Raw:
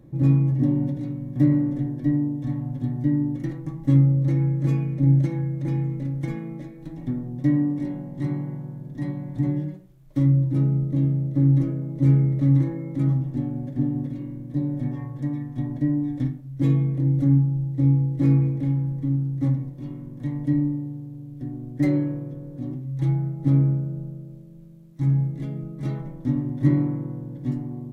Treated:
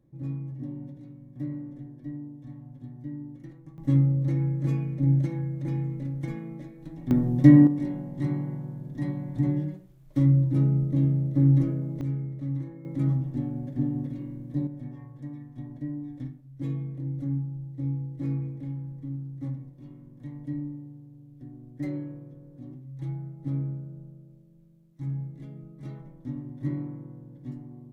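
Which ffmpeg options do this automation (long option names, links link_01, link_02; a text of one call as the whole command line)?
ffmpeg -i in.wav -af "asetnsamples=nb_out_samples=441:pad=0,asendcmd='3.78 volume volume -4.5dB;7.11 volume volume 7dB;7.67 volume volume -1.5dB;12.01 volume volume -13dB;12.85 volume volume -3.5dB;14.67 volume volume -11.5dB',volume=-15.5dB" out.wav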